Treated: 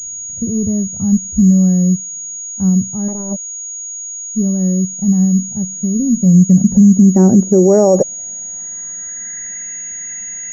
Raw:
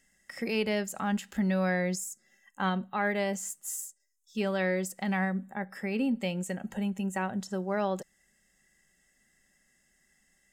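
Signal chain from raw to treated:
low-pass filter sweep 110 Hz → 2,400 Hz, 0:06.05–0:09.68
0:03.08–0:03.79: power curve on the samples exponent 3
boost into a limiter +27 dB
switching amplifier with a slow clock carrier 6,700 Hz
level −1 dB

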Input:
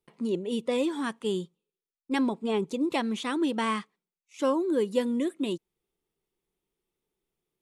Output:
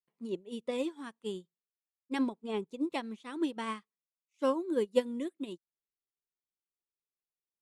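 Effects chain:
expander for the loud parts 2.5 to 1, over −38 dBFS

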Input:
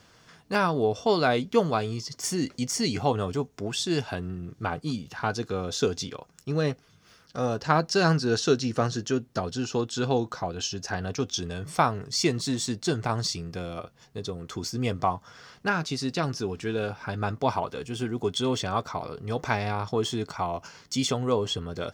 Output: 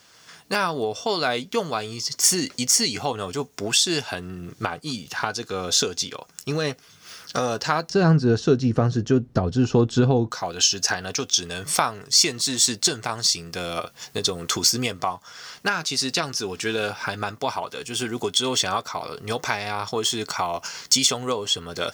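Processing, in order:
camcorder AGC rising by 15 dB per second
spectral tilt +2.5 dB per octave, from 0:07.89 −2.5 dB per octave, from 0:10.30 +3 dB per octave

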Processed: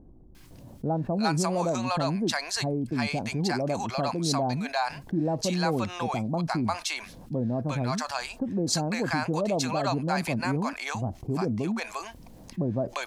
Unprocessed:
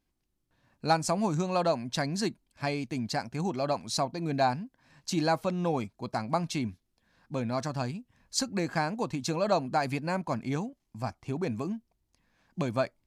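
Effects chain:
multiband delay without the direct sound lows, highs 350 ms, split 700 Hz
envelope flattener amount 50%

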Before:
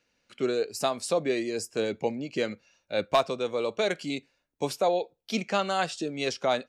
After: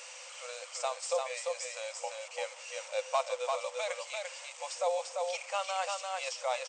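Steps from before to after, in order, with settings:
linear delta modulator 64 kbit/s, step −35.5 dBFS
brick-wall band-pass 490–8,800 Hz
graphic EQ with 15 bands 630 Hz −8 dB, 1,600 Hz −11 dB, 4,000 Hz −9 dB
on a send: single-tap delay 344 ms −3.5 dB

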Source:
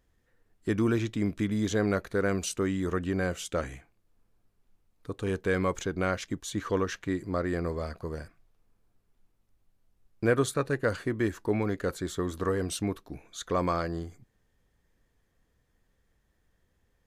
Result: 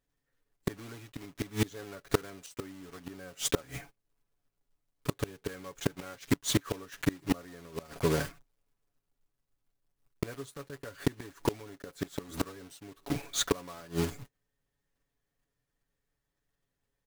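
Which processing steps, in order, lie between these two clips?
one scale factor per block 3 bits
noise gate −55 dBFS, range −20 dB
low-shelf EQ 120 Hz −3 dB
comb filter 7.1 ms, depth 60%
gate with flip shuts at −22 dBFS, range −27 dB
level +8 dB

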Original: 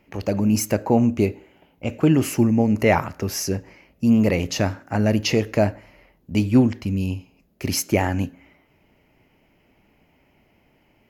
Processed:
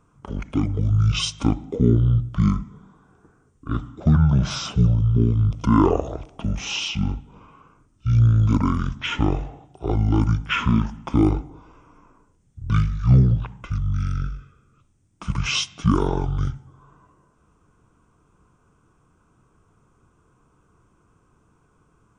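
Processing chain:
wrong playback speed 15 ips tape played at 7.5 ips

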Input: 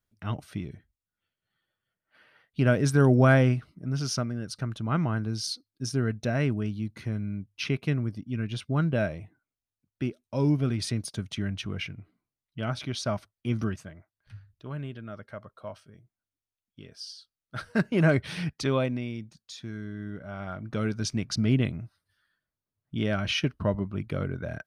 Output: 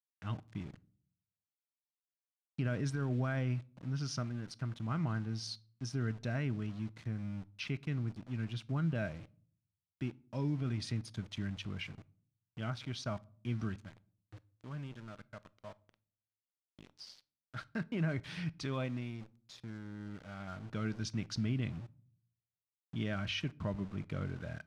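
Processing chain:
parametric band 490 Hz −5.5 dB 1.4 octaves
brickwall limiter −20.5 dBFS, peak gain reduction 9.5 dB
centre clipping without the shift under −43 dBFS
high-frequency loss of the air 76 metres
on a send: convolution reverb RT60 0.50 s, pre-delay 6 ms, DRR 18 dB
on the sum: level −6.5 dB

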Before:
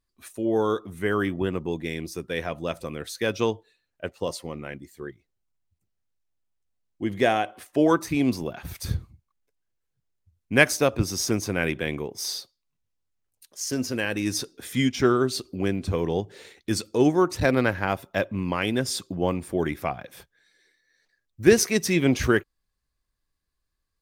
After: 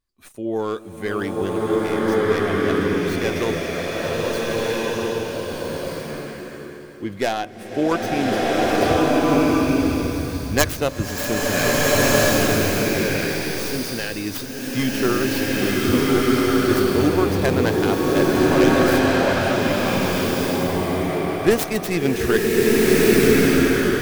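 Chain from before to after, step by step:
stylus tracing distortion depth 0.47 ms
slow-attack reverb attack 1,580 ms, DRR −7.5 dB
level −1 dB

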